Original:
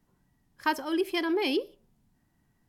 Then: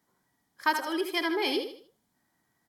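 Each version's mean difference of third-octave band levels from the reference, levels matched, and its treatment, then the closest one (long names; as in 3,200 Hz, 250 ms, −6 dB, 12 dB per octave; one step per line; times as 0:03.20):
5.5 dB: high-pass filter 640 Hz 6 dB per octave
notch filter 2,700 Hz, Q 5.5
repeating echo 77 ms, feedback 35%, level −7.5 dB
level +3 dB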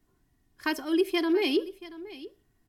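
2.5 dB: parametric band 830 Hz −4 dB 0.72 octaves
comb filter 2.8 ms, depth 55%
single-tap delay 681 ms −17 dB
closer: second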